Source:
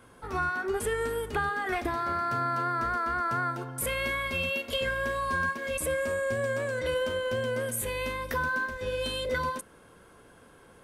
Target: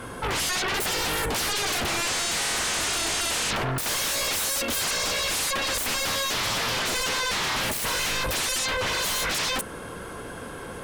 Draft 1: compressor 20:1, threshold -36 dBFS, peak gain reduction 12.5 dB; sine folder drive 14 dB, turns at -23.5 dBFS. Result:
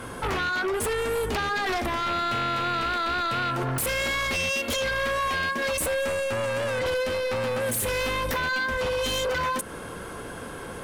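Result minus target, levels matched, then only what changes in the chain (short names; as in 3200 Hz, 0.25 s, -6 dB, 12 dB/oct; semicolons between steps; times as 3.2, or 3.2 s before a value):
compressor: peak gain reduction +12.5 dB
remove: compressor 20:1, threshold -36 dBFS, peak gain reduction 12.5 dB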